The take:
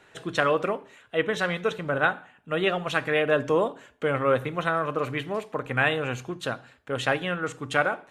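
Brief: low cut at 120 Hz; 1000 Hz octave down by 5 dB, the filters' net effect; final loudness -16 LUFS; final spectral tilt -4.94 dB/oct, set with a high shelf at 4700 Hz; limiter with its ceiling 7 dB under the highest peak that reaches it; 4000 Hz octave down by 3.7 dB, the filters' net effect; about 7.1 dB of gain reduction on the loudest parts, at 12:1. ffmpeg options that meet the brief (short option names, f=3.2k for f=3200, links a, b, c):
-af "highpass=120,equalizer=f=1k:t=o:g=-7,equalizer=f=4k:t=o:g=-6.5,highshelf=f=4.7k:g=4,acompressor=threshold=-27dB:ratio=12,volume=19dB,alimiter=limit=-4dB:level=0:latency=1"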